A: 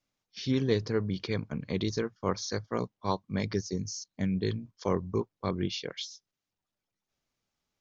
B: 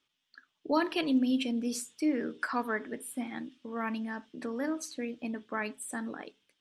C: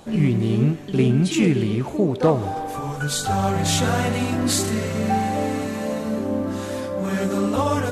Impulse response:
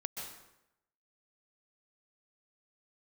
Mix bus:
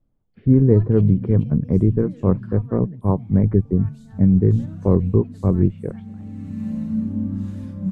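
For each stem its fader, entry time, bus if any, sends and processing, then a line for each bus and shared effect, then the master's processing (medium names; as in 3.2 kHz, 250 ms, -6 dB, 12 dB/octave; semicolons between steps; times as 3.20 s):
-1.0 dB, 0.00 s, no send, low-pass 2.1 kHz 24 dB/octave; tilt EQ -3.5 dB/octave
-18.5 dB, 0.00 s, no send, none
-2.0 dB, 0.85 s, no send, FFT filter 210 Hz 0 dB, 430 Hz -28 dB, 2.4 kHz -12 dB; auto duck -16 dB, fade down 1.45 s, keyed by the first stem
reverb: none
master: tilt shelf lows +8 dB, about 1.3 kHz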